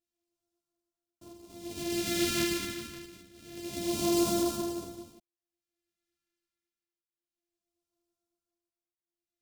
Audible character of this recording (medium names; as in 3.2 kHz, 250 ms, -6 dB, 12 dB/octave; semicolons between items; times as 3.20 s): a buzz of ramps at a fixed pitch in blocks of 128 samples; phasing stages 2, 0.27 Hz, lowest notch 770–1900 Hz; tremolo triangle 0.53 Hz, depth 90%; a shimmering, thickened sound